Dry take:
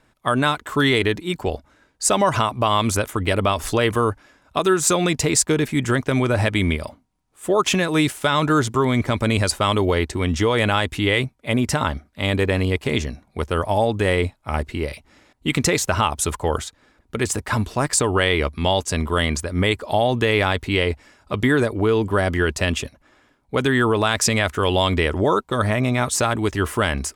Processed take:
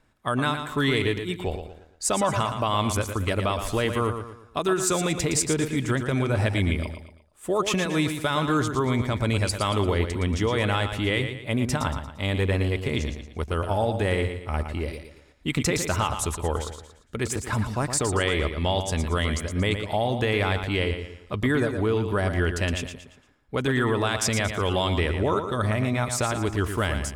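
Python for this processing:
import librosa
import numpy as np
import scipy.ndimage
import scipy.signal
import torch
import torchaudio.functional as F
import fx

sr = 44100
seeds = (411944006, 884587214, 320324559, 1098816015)

y = fx.low_shelf(x, sr, hz=98.0, db=7.0)
y = fx.echo_feedback(y, sr, ms=115, feedback_pct=39, wet_db=-8.0)
y = F.gain(torch.from_numpy(y), -6.5).numpy()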